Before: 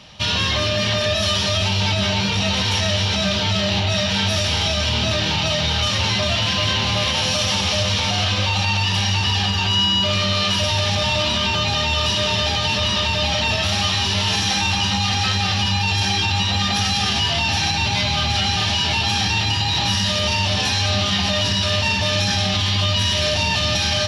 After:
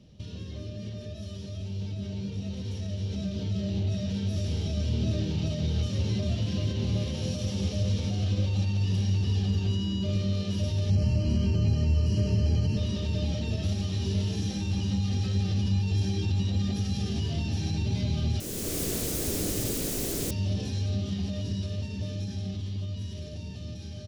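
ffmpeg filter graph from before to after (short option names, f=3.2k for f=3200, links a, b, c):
-filter_complex "[0:a]asettb=1/sr,asplit=3[a][b][c];[a]atrim=end=10.904[d];[b]atrim=start=10.9:end=12.77,asetpts=PTS-STARTPTS,afade=t=in:d=0.004:c=qsin,afade=t=out:st=1.866:d=0.004:c=qsin,asuperstop=centerf=3600:order=12:qfactor=4.8,lowshelf=f=180:g=9[e];[c]atrim=start=12.766[f];[d][e]acrossfade=d=0.004:c1=hsin:c2=qsin[g];[g][f]acrossfade=d=0.004:c1=qsin:c2=hsin,asettb=1/sr,asplit=3[h][i][j];[h]atrim=end=18.404[k];[i]atrim=start=18.4:end=20.31,asetpts=PTS-STARTPTS,afade=t=in:d=0.004:c=qsin,afade=t=out:st=1.906:d=0.004:c=qsin,highshelf=f=8.6k:g=9.5,aeval=exprs='(mod(7.5*val(0)+1,2)-1)/7.5':c=same[l];[j]atrim=start=20.306[m];[k][l]acrossfade=d=0.004:c1=hsin:c2=qsin[n];[n][m]acrossfade=d=0.004:c1=qsin:c2=hsin,alimiter=limit=-18.5dB:level=0:latency=1:release=495,firequalizer=gain_entry='entry(400,0);entry(860,-24);entry(6500,-14)':delay=0.05:min_phase=1,dynaudnorm=f=810:g=9:m=10dB,volume=-4.5dB"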